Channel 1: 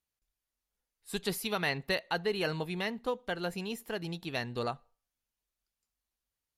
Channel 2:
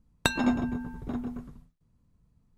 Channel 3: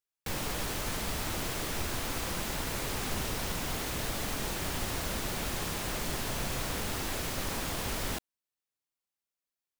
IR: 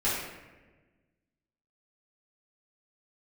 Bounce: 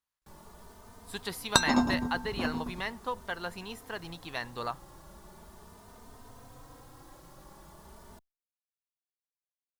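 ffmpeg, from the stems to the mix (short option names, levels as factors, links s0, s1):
-filter_complex "[0:a]equalizer=f=2300:w=0.67:g=11.5,volume=0.447[s0];[1:a]equalizer=f=5200:w=1.4:g=14,adelay=1300,volume=0.891[s1];[2:a]tiltshelf=f=1100:g=3.5,asplit=2[s2][s3];[s3]adelay=3.1,afreqshift=0.4[s4];[s2][s4]amix=inputs=2:normalize=1,volume=0.141[s5];[s0][s1][s5]amix=inputs=3:normalize=0,equalizer=f=1000:t=o:w=0.67:g=8,equalizer=f=2500:t=o:w=0.67:g=-8,equalizer=f=10000:t=o:w=0.67:g=3"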